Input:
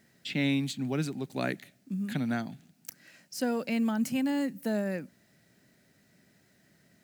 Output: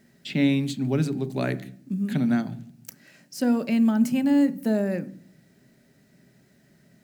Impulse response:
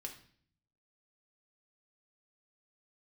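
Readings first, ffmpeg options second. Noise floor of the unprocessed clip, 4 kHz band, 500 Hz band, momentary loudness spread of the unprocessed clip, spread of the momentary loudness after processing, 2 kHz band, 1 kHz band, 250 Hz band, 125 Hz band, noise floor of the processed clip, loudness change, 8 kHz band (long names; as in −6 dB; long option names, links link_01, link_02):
−66 dBFS, +1.5 dB, +5.5 dB, 14 LU, 14 LU, +1.5 dB, +2.5 dB, +8.0 dB, +7.5 dB, −60 dBFS, +7.0 dB, +1.5 dB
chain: -filter_complex "[0:a]asplit=2[link_01][link_02];[link_02]tiltshelf=frequency=1100:gain=9[link_03];[1:a]atrim=start_sample=2205[link_04];[link_03][link_04]afir=irnorm=-1:irlink=0,volume=-2dB[link_05];[link_01][link_05]amix=inputs=2:normalize=0"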